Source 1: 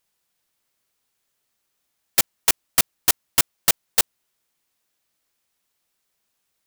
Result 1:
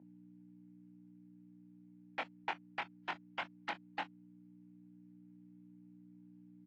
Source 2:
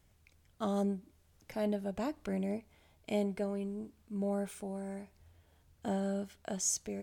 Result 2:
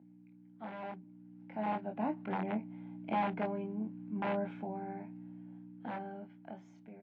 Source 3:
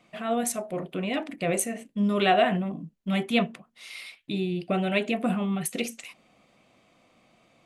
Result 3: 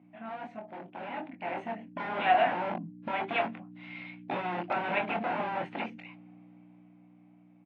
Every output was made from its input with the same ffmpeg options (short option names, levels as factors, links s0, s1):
-filter_complex "[0:a]equalizer=f=520:w=1:g=-5,acrossover=split=610[s0][s1];[s0]aeval=exprs='(mod(31.6*val(0)+1,2)-1)/31.6':c=same[s2];[s2][s1]amix=inputs=2:normalize=0,aeval=exprs='0.944*(cos(1*acos(clip(val(0)/0.944,-1,1)))-cos(1*PI/2))+0.119*(cos(2*acos(clip(val(0)/0.944,-1,1)))-cos(2*PI/2))':c=same,aeval=exprs='val(0)+0.00891*(sin(2*PI*60*n/s)+sin(2*PI*2*60*n/s)/2+sin(2*PI*3*60*n/s)/3+sin(2*PI*4*60*n/s)/4+sin(2*PI*5*60*n/s)/5)':c=same,dynaudnorm=f=320:g=11:m=3.98,highpass=f=200:w=0.5412,highpass=f=200:w=1.3066,equalizer=f=430:t=q:w=4:g=-8,equalizer=f=840:t=q:w=4:g=7,equalizer=f=1200:t=q:w=4:g=-10,equalizer=f=1800:t=q:w=4:g=-5,lowpass=f=2100:w=0.5412,lowpass=f=2100:w=1.3066,asplit=2[s3][s4];[s4]adelay=23,volume=0.531[s5];[s3][s5]amix=inputs=2:normalize=0,volume=0.473" -ar 24000 -c:a aac -b:a 32k